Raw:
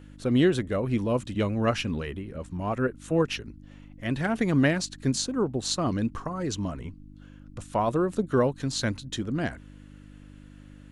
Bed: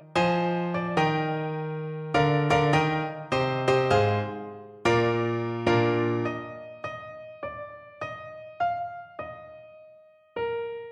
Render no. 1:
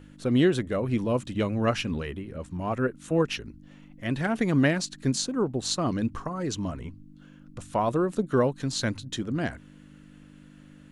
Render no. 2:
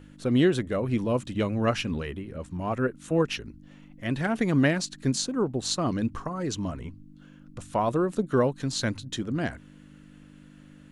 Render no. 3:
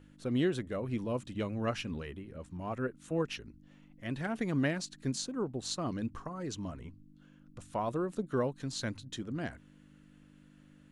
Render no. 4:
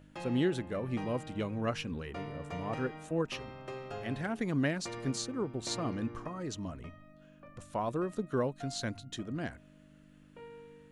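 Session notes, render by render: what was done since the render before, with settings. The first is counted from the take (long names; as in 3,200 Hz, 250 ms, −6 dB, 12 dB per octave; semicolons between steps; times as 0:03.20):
hum removal 50 Hz, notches 2
no processing that can be heard
level −8.5 dB
mix in bed −20.5 dB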